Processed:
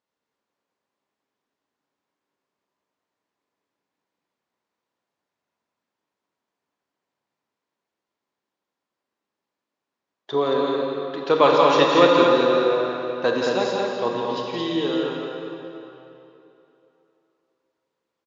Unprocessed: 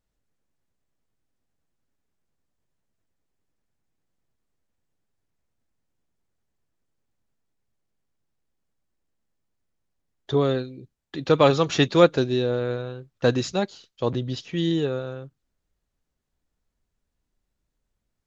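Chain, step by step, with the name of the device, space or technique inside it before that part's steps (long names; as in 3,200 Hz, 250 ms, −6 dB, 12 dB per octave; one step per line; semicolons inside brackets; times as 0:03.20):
station announcement (band-pass filter 310–5,000 Hz; parametric band 1,000 Hz +6.5 dB 0.35 octaves; loudspeakers that aren't time-aligned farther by 58 metres −7 dB, 77 metres −4 dB; convolution reverb RT60 3.1 s, pre-delay 26 ms, DRR 1 dB)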